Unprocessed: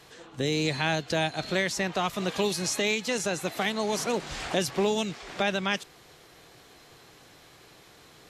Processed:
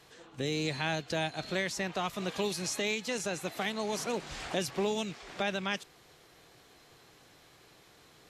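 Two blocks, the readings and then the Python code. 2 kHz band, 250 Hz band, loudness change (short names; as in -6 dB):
-5.5 dB, -5.5 dB, -5.5 dB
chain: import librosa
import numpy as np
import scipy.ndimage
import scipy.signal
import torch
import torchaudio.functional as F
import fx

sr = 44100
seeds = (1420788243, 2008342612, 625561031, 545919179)

y = fx.rattle_buzz(x, sr, strikes_db=-40.0, level_db=-36.0)
y = y * librosa.db_to_amplitude(-5.5)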